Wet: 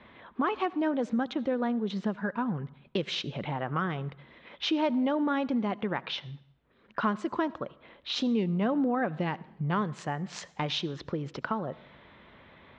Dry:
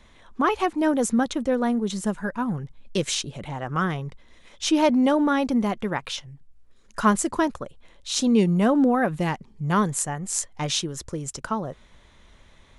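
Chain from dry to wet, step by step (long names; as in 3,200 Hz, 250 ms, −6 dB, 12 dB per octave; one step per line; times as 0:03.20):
high-pass filter 130 Hz 12 dB per octave
low-pass that shuts in the quiet parts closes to 2,700 Hz, open at −19.5 dBFS
low-pass filter 3,900 Hz 24 dB per octave
downward compressor 2.5 to 1, threshold −36 dBFS, peak gain reduction 14.5 dB
on a send: convolution reverb RT60 0.80 s, pre-delay 62 ms, DRR 20.5 dB
on the sum: level +4.5 dB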